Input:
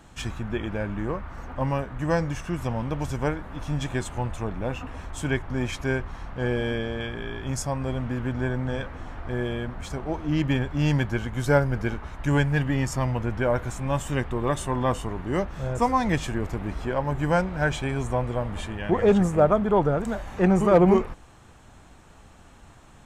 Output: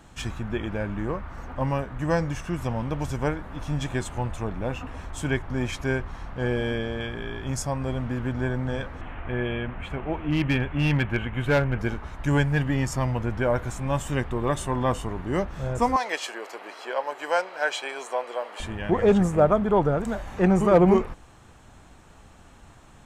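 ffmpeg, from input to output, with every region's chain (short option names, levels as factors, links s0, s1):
-filter_complex "[0:a]asettb=1/sr,asplit=3[s0][s1][s2];[s0]atrim=end=9.014[s3];[s1]atrim=start=9.01:end=11.79,asetpts=PTS-STARTPTS,afade=t=in:d=0.004:c=qsin,afade=t=out:st=2.776:d=0.004:c=qsin,highshelf=f=3800:t=q:w=3:g=-12,volume=5.96,asoftclip=hard,volume=0.168[s4];[s2]atrim=start=11.786[s5];[s3][s4]acrossfade=d=0.004:c1=hsin:c2=qsin[s6];[s6][s5]acrossfade=d=0.004:c1=qsin:c2=hsin,asettb=1/sr,asplit=3[s7][s8][s9];[s7]atrim=end=15.964[s10];[s8]atrim=start=15.96:end=18.6,asetpts=PTS-STARTPTS,afade=t=in:d=0.004:c=qsin,afade=t=out:st=2.636:d=0.004:c=qsin,highpass=f=450:w=0.5412,highpass=f=450:w=1.3066,equalizer=f=3800:w=1.8:g=9.5,bandreject=f=3600:w=5.4[s11];[s9]atrim=start=18.596[s12];[s10][s11]acrossfade=d=0.004:c1=hsin:c2=qsin[s13];[s13][s12]acrossfade=d=0.004:c1=qsin:c2=hsin"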